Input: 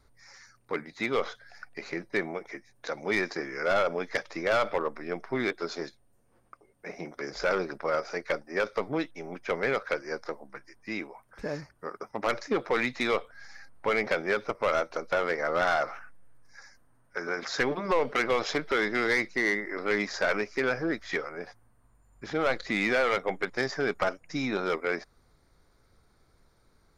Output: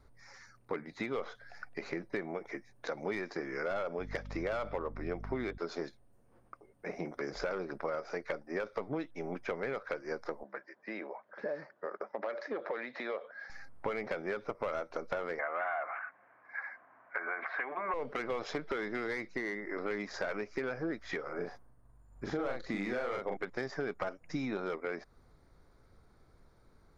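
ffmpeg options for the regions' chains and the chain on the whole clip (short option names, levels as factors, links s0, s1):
-filter_complex "[0:a]asettb=1/sr,asplit=3[s0][s1][s2];[s0]atrim=end=3.994[s3];[s1]atrim=start=3.99:end=5.58,asetpts=PTS-STARTPTS,afade=t=in:d=0.004:c=qsin,afade=t=out:st=1.586:d=0.004:c=qsin,bandreject=f=1700:w=29,aeval=exprs='val(0)+0.00891*(sin(2*PI*50*n/s)+sin(2*PI*2*50*n/s)/2+sin(2*PI*3*50*n/s)/3+sin(2*PI*4*50*n/s)/4+sin(2*PI*5*50*n/s)/5)':c=same[s4];[s2]atrim=start=5.576[s5];[s3][s4]acrossfade=d=0.004:c1=hsin:c2=qsin[s6];[s6][s5]acrossfade=d=0.004:c1=qsin:c2=hsin,asettb=1/sr,asplit=3[s7][s8][s9];[s7]atrim=end=10.434[s10];[s8]atrim=start=10.43:end=13.5,asetpts=PTS-STARTPTS,afade=t=in:d=0.004:c=qsin,afade=t=out:st=3.066:d=0.004:c=qsin,acompressor=threshold=0.0158:ratio=3:attack=3.2:release=140:knee=1:detection=peak,highpass=f=220:w=0.5412,highpass=f=220:w=1.3066,equalizer=f=270:t=q:w=4:g=-7,equalizer=f=580:t=q:w=4:g=9,equalizer=f=1700:t=q:w=4:g=6,equalizer=f=2700:t=q:w=4:g=-3,lowpass=f=4500:w=0.5412,lowpass=f=4500:w=1.3066[s11];[s9]atrim=start=13.496[s12];[s10][s11]acrossfade=d=0.004:c1=hsin:c2=qsin[s13];[s13][s12]acrossfade=d=0.004:c1=qsin:c2=hsin,asettb=1/sr,asplit=3[s14][s15][s16];[s14]atrim=end=15.394[s17];[s15]atrim=start=15.39:end=17.94,asetpts=PTS-STARTPTS,afade=t=in:d=0.004:c=qsin,afade=t=out:st=2.546:d=0.004:c=qsin,acompressor=threshold=0.0141:ratio=1.5:attack=3.2:release=140:knee=1:detection=peak,aeval=exprs='0.112*sin(PI/2*1.41*val(0)/0.112)':c=same,highpass=450,equalizer=f=470:t=q:w=4:g=-5,equalizer=f=700:t=q:w=4:g=8,equalizer=f=1100:t=q:w=4:g=8,equalizer=f=1600:t=q:w=4:g=7,equalizer=f=2200:t=q:w=4:g=10,lowpass=f=2600:w=0.5412,lowpass=f=2600:w=1.3066[s18];[s16]atrim=start=17.936[s19];[s17][s18]acrossfade=d=0.004:c1=hsin:c2=qsin[s20];[s20][s19]acrossfade=d=0.004:c1=qsin:c2=hsin,asettb=1/sr,asplit=3[s21][s22][s23];[s21]atrim=end=21.224[s24];[s22]atrim=start=21.22:end=23.37,asetpts=PTS-STARTPTS,afade=t=in:d=0.004:c=qsin,afade=t=out:st=2.146:d=0.004:c=qsin,agate=range=0.0224:threshold=0.00112:ratio=3:release=100:detection=peak,equalizer=f=2500:w=1.3:g=-4,asplit=2[s25][s26];[s26]adelay=41,volume=0.708[s27];[s25][s27]amix=inputs=2:normalize=0,atrim=end_sample=94815[s28];[s23]atrim=start=23.366[s29];[s24][s28]acrossfade=d=0.004:c1=hsin:c2=qsin[s30];[s30][s29]acrossfade=d=0.004:c1=qsin:c2=hsin,acompressor=threshold=0.02:ratio=6,highshelf=f=2100:g=-9,volume=1.26"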